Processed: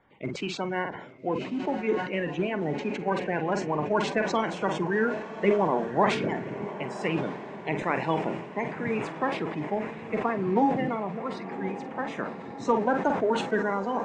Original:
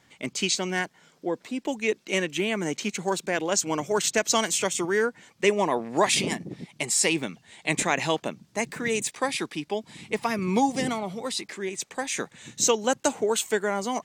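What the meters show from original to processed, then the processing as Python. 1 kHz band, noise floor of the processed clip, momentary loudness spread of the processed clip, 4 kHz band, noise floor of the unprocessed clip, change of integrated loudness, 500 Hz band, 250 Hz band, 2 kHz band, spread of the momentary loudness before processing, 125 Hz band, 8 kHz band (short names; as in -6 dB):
+1.0 dB, -41 dBFS, 9 LU, -11.0 dB, -63 dBFS, -2.0 dB, -0.5 dB, +0.5 dB, -3.5 dB, 10 LU, +2.0 dB, -23.5 dB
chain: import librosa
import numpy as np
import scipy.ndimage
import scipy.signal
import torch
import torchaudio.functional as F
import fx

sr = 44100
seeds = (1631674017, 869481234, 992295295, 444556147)

y = fx.spec_quant(x, sr, step_db=30)
y = scipy.signal.sosfilt(scipy.signal.butter(2, 1400.0, 'lowpass', fs=sr, output='sos'), y)
y = fx.doubler(y, sr, ms=46.0, db=-12)
y = fx.echo_diffused(y, sr, ms=1121, feedback_pct=61, wet_db=-12)
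y = fx.sustainer(y, sr, db_per_s=71.0)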